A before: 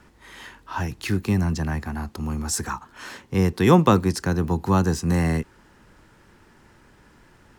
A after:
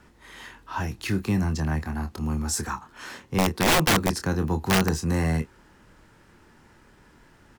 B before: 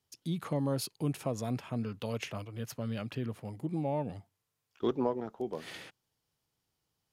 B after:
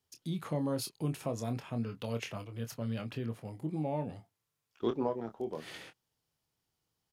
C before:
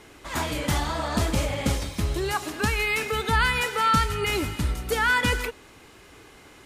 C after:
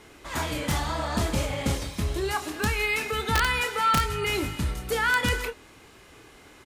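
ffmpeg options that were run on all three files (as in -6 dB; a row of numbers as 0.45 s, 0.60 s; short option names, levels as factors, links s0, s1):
-filter_complex "[0:a]asplit=2[s0][s1];[s1]adelay=26,volume=0.376[s2];[s0][s2]amix=inputs=2:normalize=0,aeval=exprs='(mod(3.55*val(0)+1,2)-1)/3.55':c=same,acontrast=69,volume=0.376"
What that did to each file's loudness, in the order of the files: -2.5 LU, -1.5 LU, -1.5 LU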